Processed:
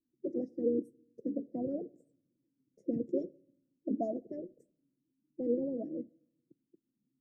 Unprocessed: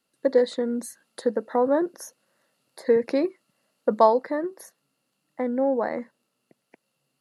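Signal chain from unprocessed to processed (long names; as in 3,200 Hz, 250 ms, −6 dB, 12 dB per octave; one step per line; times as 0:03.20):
elliptic band-stop filter 220–5,600 Hz, stop band 70 dB
formants moved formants +5 semitones
auto-filter low-pass sine 7.2 Hz 460–1,600 Hz
on a send: convolution reverb RT60 0.70 s, pre-delay 3 ms, DRR 23 dB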